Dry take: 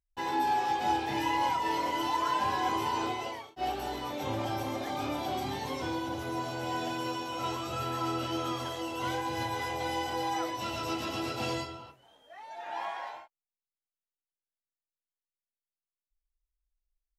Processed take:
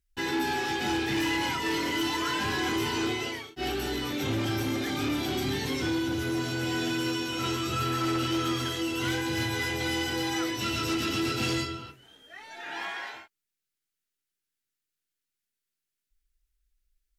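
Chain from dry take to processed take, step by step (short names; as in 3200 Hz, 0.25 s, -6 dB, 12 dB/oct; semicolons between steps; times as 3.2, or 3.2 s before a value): band shelf 760 Hz -13 dB 1.3 oct; sine folder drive 5 dB, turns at -23.5 dBFS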